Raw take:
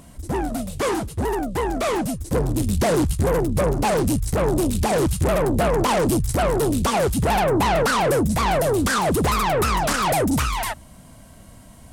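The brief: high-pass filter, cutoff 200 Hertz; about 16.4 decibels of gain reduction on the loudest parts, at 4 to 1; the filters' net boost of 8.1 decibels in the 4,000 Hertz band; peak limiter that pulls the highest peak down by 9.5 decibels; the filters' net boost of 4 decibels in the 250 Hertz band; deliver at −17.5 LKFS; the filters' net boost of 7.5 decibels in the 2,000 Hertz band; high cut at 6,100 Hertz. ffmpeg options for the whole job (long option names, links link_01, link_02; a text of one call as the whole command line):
ffmpeg -i in.wav -af "highpass=200,lowpass=6100,equalizer=frequency=250:width_type=o:gain=7,equalizer=frequency=2000:width_type=o:gain=7.5,equalizer=frequency=4000:width_type=o:gain=8.5,acompressor=threshold=-34dB:ratio=4,volume=19dB,alimiter=limit=-9dB:level=0:latency=1" out.wav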